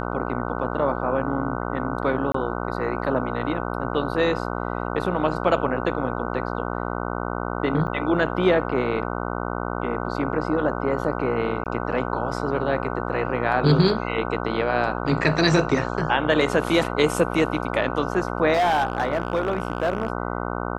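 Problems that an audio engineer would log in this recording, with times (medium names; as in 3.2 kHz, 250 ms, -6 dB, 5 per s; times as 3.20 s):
buzz 60 Hz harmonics 25 -28 dBFS
2.32–2.34 s: dropout 24 ms
7.87–7.88 s: dropout 6.1 ms
11.64–11.66 s: dropout 18 ms
18.53–20.10 s: clipped -16.5 dBFS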